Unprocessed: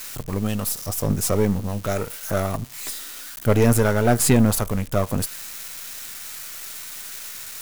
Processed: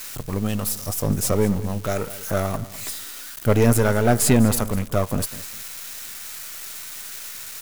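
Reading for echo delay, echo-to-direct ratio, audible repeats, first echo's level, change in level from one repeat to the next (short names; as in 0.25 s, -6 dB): 0.202 s, -16.0 dB, 2, -16.5 dB, -12.5 dB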